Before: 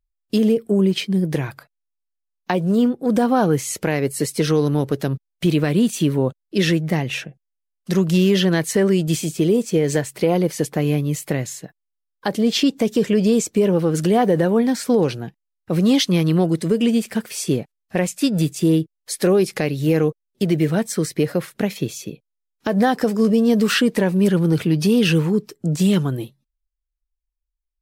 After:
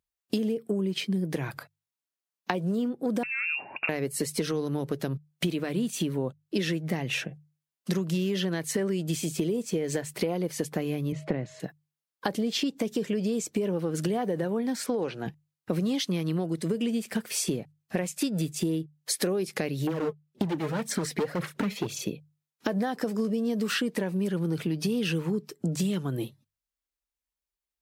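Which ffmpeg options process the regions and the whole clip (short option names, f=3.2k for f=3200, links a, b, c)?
-filter_complex "[0:a]asettb=1/sr,asplit=3[a][b][c];[a]atrim=end=3.234[d];[b]atrim=start=3.23:end=3.89,asetpts=PTS-STARTPTS,afade=t=in:d=0.004:c=qsin,afade=t=out:st=0.656:d=0.004:c=qsin,acompressor=threshold=-22dB:ratio=6:attack=3.2:release=140:knee=1:detection=peak,lowpass=f=2.5k:t=q:w=0.5098,lowpass=f=2.5k:t=q:w=0.6013,lowpass=f=2.5k:t=q:w=0.9,lowpass=f=2.5k:t=q:w=2.563,afreqshift=-2900[e];[c]atrim=start=3.886[f];[d][e]acrossfade=d=0.004:c1=hsin:c2=qsin[g];[g][f]acrossfade=d=0.004:c1=qsin:c2=hsin,asettb=1/sr,asplit=3[h][i][j];[h]atrim=end=11.124[k];[i]atrim=start=11.12:end=11.6,asetpts=PTS-STARTPTS,afade=t=in:d=0.004:c=qsin,afade=t=out:st=0.476:d=0.004:c=qsin,tiltshelf=f=1.3k:g=4.5,aeval=exprs='val(0)+0.00398*sin(2*PI*630*n/s)':c=same,highpass=110,lowpass=3.4k[l];[j]atrim=start=11.596[m];[k][l]acrossfade=d=0.004:c1=hsin:c2=qsin[n];[n][m]acrossfade=d=0.004:c1=qsin:c2=hsin,asettb=1/sr,asplit=3[o][p][q];[o]atrim=end=14.864[r];[p]atrim=start=14.86:end=15.26,asetpts=PTS-STARTPTS,afade=t=in:d=0.004:c=qsin,afade=t=out:st=0.396:d=0.004:c=qsin,lowpass=9.3k,acrossover=split=3100[s][t];[t]acompressor=threshold=-48dB:ratio=4:attack=1:release=60[u];[s][u]amix=inputs=2:normalize=0,lowshelf=f=230:g=-11.5[v];[q]atrim=start=15.256[w];[r][v]acrossfade=d=0.004:c1=hsin:c2=qsin[x];[x][w]acrossfade=d=0.004:c1=qsin:c2=hsin,asettb=1/sr,asplit=3[y][z][aa];[y]atrim=end=19.874[ab];[z]atrim=start=19.87:end=22.02,asetpts=PTS-STARTPTS,afade=t=in:d=0.004:c=qsin,afade=t=out:st=2.146:d=0.004:c=qsin,highshelf=f=5.4k:g=-8.5,volume=19.5dB,asoftclip=hard,volume=-19.5dB,aphaser=in_gain=1:out_gain=1:delay=4.8:decay=0.55:speed=1.9:type=sinusoidal[ac];[aa]atrim=start=22.016[ad];[ab][ac]acrossfade=d=0.004:c1=hsin:c2=qsin[ae];[ae][ad]acrossfade=d=0.004:c1=qsin:c2=hsin,highpass=110,acompressor=threshold=-28dB:ratio=8,bandreject=f=50:t=h:w=6,bandreject=f=100:t=h:w=6,bandreject=f=150:t=h:w=6,volume=2.5dB"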